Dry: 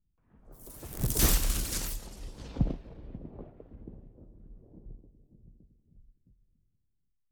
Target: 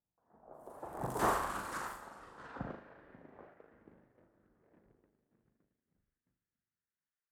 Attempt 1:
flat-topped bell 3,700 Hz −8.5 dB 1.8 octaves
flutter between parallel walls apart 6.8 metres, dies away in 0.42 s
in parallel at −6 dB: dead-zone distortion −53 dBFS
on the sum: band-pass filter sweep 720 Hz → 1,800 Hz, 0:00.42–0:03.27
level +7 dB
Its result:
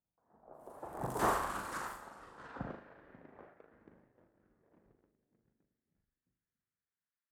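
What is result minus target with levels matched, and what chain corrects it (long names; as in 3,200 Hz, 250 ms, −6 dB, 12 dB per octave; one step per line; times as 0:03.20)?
dead-zone distortion: distortion +8 dB
flat-topped bell 3,700 Hz −8.5 dB 1.8 octaves
flutter between parallel walls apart 6.8 metres, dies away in 0.42 s
in parallel at −6 dB: dead-zone distortion −62 dBFS
on the sum: band-pass filter sweep 720 Hz → 1,800 Hz, 0:00.42–0:03.27
level +7 dB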